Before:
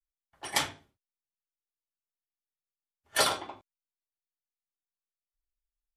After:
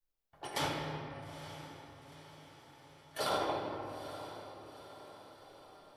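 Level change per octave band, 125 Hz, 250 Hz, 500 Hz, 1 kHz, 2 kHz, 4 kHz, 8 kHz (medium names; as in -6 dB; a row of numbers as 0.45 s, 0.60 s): +6.5 dB, +4.0 dB, +0.5 dB, -1.5 dB, -8.0 dB, -8.0 dB, -13.0 dB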